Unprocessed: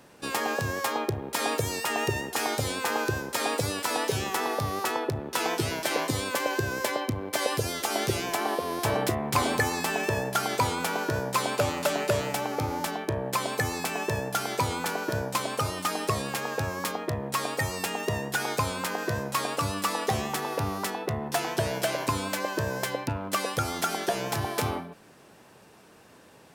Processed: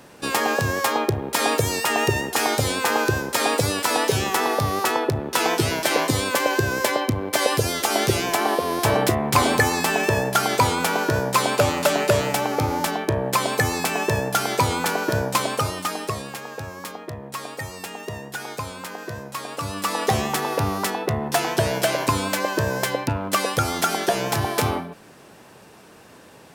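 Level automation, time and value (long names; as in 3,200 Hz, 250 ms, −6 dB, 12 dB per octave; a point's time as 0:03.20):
0:15.43 +7 dB
0:16.44 −3.5 dB
0:19.44 −3.5 dB
0:20.08 +6.5 dB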